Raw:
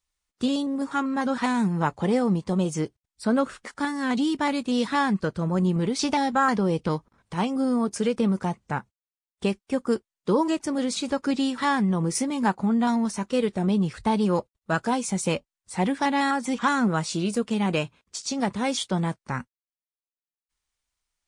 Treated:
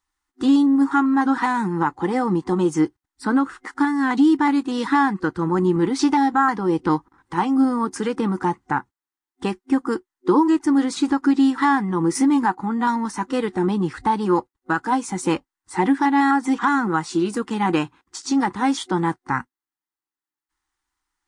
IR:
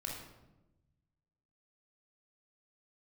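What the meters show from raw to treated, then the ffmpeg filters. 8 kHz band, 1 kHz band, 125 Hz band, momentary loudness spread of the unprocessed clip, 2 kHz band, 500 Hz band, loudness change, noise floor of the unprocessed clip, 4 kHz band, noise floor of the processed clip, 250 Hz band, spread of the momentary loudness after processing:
-1.0 dB, +6.0 dB, -0.5 dB, 7 LU, +4.5 dB, +2.0 dB, +5.0 dB, under -85 dBFS, -1.5 dB, under -85 dBFS, +5.5 dB, 8 LU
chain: -af "superequalizer=6b=3.98:8b=0.447:9b=3.16:10b=2.82:11b=2.51,alimiter=limit=-8.5dB:level=0:latency=1:release=438"

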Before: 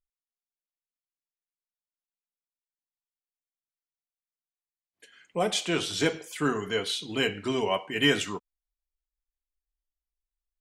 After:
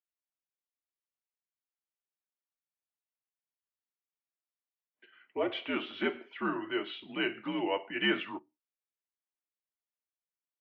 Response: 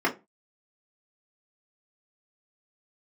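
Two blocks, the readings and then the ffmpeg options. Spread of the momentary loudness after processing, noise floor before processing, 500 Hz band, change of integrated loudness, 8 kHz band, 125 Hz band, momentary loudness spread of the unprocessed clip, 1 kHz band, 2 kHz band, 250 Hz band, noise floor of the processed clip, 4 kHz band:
8 LU, under -85 dBFS, -6.5 dB, -6.0 dB, under -40 dB, -13.5 dB, 6 LU, -5.0 dB, -4.5 dB, -4.0 dB, under -85 dBFS, -8.5 dB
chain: -filter_complex "[0:a]asplit=2[a][b];[1:a]atrim=start_sample=2205[c];[b][c]afir=irnorm=-1:irlink=0,volume=-30dB[d];[a][d]amix=inputs=2:normalize=0,highpass=f=330:t=q:w=0.5412,highpass=f=330:t=q:w=1.307,lowpass=f=3.1k:t=q:w=0.5176,lowpass=f=3.1k:t=q:w=0.7071,lowpass=f=3.1k:t=q:w=1.932,afreqshift=-82,volume=-4.5dB"

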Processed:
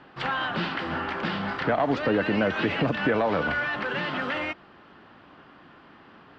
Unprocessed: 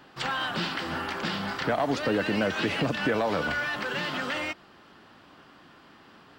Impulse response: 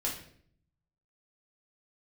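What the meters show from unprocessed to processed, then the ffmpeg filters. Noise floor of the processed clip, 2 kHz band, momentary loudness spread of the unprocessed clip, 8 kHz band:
-52 dBFS, +2.0 dB, 5 LU, under -10 dB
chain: -af "lowpass=2.8k,volume=2.5dB"

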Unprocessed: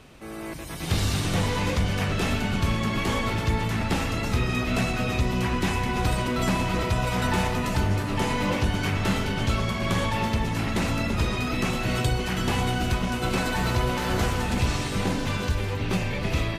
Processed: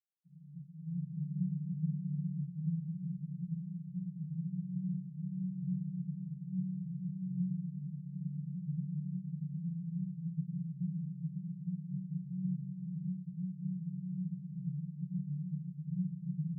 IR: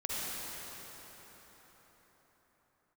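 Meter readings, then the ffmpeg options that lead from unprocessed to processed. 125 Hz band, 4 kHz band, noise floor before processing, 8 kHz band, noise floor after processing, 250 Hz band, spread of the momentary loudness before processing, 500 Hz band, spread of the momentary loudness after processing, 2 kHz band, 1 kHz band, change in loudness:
-11.0 dB, under -40 dB, -34 dBFS, under -40 dB, -50 dBFS, -10.0 dB, 2 LU, under -40 dB, 5 LU, under -40 dB, under -40 dB, -13.5 dB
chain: -filter_complex "[0:a]acrusher=bits=3:dc=4:mix=0:aa=0.000001,asuperpass=centerf=160:order=20:qfactor=3.3,asplit=2[a][b];[1:a]atrim=start_sample=2205[c];[b][c]afir=irnorm=-1:irlink=0,volume=-14.5dB[d];[a][d]amix=inputs=2:normalize=0,volume=1dB"

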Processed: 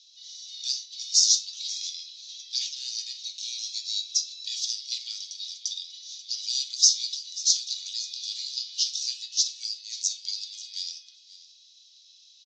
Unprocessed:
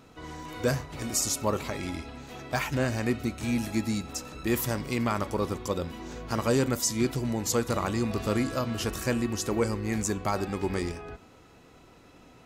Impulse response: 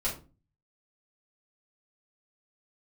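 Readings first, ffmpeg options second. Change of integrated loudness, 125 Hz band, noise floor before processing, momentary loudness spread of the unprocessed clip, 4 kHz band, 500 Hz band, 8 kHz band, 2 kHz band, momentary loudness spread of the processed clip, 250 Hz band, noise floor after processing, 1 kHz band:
+2.5 dB, under -40 dB, -55 dBFS, 10 LU, +13.5 dB, under -40 dB, +8.0 dB, -18.5 dB, 15 LU, under -40 dB, -56 dBFS, under -40 dB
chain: -filter_complex "[0:a]asuperpass=centerf=4700:order=8:qfactor=1.7,aecho=1:1:537:0.133,acontrast=89,asplit=2[a][b];[1:a]atrim=start_sample=2205[c];[b][c]afir=irnorm=-1:irlink=0,volume=-6.5dB[d];[a][d]amix=inputs=2:normalize=0,volume=3.5dB"

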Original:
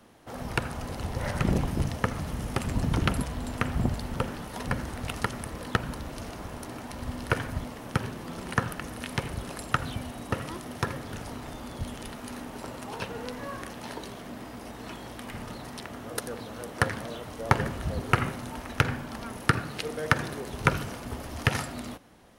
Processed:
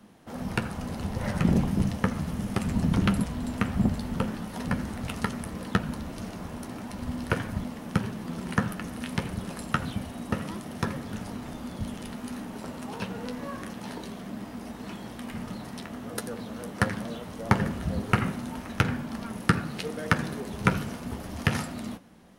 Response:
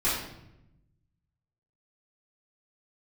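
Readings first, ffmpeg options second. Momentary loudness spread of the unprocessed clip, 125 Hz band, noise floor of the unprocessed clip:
12 LU, +1.5 dB, -42 dBFS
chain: -af "equalizer=f=200:t=o:w=0.62:g=10.5,flanger=delay=9.7:depth=3.1:regen=-49:speed=1.6:shape=sinusoidal,volume=2.5dB"

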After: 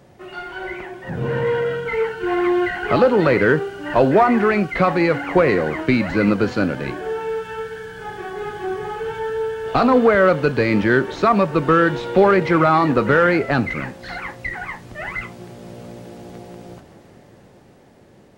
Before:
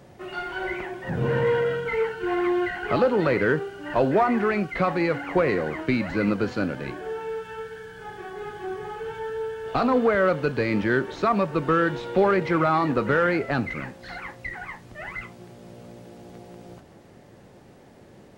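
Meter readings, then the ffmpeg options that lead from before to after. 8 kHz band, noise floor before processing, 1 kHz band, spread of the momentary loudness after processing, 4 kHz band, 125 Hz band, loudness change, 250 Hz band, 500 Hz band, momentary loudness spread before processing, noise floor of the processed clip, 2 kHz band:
n/a, -50 dBFS, +6.5 dB, 17 LU, +6.0 dB, +6.0 dB, +6.5 dB, +6.5 dB, +6.0 dB, 16 LU, -49 dBFS, +6.0 dB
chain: -af "dynaudnorm=f=310:g=13:m=8dB"

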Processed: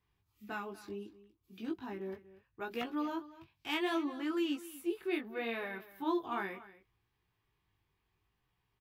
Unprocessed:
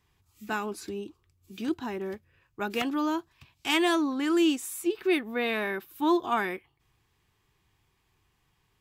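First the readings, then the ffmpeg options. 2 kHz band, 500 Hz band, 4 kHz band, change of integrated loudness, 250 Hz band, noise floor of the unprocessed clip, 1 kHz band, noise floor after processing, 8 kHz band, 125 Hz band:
-9.5 dB, -9.0 dB, -10.5 dB, -9.5 dB, -9.0 dB, -72 dBFS, -9.5 dB, -81 dBFS, -17.0 dB, n/a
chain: -af "equalizer=f=7.8k:t=o:w=1:g=-10.5,flanger=delay=16.5:depth=4.2:speed=0.7,aecho=1:1:241:0.133,volume=-6dB"

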